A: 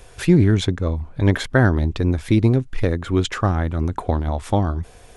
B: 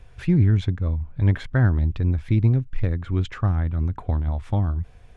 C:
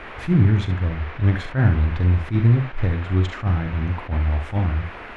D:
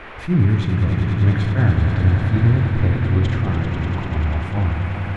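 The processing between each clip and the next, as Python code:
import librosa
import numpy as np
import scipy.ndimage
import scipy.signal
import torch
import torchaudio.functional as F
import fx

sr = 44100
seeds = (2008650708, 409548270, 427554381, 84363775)

y1 = fx.curve_eq(x, sr, hz=(120.0, 390.0, 2300.0, 10000.0), db=(0, -12, -8, -22))
y2 = fx.dmg_noise_band(y1, sr, seeds[0], low_hz=210.0, high_hz=2300.0, level_db=-40.0)
y2 = fx.room_early_taps(y2, sr, ms=(43, 67), db=(-9.0, -10.5))
y2 = fx.attack_slew(y2, sr, db_per_s=260.0)
y2 = F.gain(torch.from_numpy(y2), 1.5).numpy()
y3 = fx.echo_swell(y2, sr, ms=98, loudest=5, wet_db=-10)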